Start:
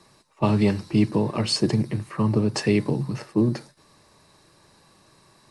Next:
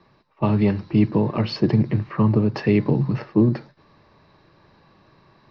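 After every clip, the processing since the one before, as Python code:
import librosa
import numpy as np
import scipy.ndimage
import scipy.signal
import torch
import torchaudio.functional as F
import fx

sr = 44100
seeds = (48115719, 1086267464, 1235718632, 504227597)

y = fx.rider(x, sr, range_db=10, speed_s=0.5)
y = scipy.signal.sosfilt(scipy.signal.butter(8, 5500.0, 'lowpass', fs=sr, output='sos'), y)
y = fx.bass_treble(y, sr, bass_db=2, treble_db=-14)
y = y * 10.0 ** (2.0 / 20.0)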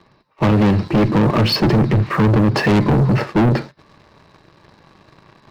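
y = fx.clip_asym(x, sr, top_db=-19.0, bottom_db=-11.5)
y = fx.leveller(y, sr, passes=2)
y = 10.0 ** (-17.5 / 20.0) * np.tanh(y / 10.0 ** (-17.5 / 20.0))
y = y * 10.0 ** (7.0 / 20.0)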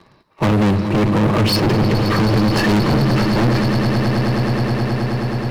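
y = fx.peak_eq(x, sr, hz=11000.0, db=6.0, octaves=0.79)
y = fx.echo_swell(y, sr, ms=106, loudest=8, wet_db=-12.5)
y = 10.0 ** (-14.5 / 20.0) * np.tanh(y / 10.0 ** (-14.5 / 20.0))
y = y * 10.0 ** (2.5 / 20.0)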